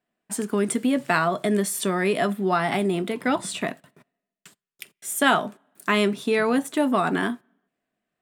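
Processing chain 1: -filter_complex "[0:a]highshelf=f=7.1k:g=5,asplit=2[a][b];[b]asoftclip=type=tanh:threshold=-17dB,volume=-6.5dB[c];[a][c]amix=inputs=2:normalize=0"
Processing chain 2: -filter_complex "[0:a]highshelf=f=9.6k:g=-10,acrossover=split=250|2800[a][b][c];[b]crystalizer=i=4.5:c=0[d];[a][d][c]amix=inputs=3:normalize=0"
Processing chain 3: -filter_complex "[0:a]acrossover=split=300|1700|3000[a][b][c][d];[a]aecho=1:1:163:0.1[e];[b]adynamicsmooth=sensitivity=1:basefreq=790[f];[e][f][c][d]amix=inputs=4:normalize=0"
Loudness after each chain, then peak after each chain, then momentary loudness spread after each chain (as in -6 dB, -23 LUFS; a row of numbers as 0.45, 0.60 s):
-21.0, -22.5, -24.5 LUFS; -3.0, -3.0, -7.0 dBFS; 9, 10, 9 LU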